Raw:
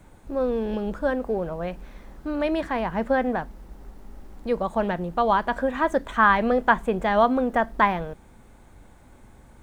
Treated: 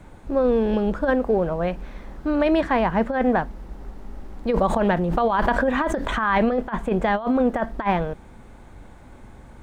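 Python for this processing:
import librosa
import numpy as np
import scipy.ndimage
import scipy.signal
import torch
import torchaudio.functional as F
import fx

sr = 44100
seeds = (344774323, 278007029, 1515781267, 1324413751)

y = fx.over_compress(x, sr, threshold_db=-23.0, ratio=-0.5)
y = fx.high_shelf(y, sr, hz=7500.0, db=-11.5)
y = fx.pre_swell(y, sr, db_per_s=27.0, at=(4.5, 6.59))
y = y * 10.0 ** (4.0 / 20.0)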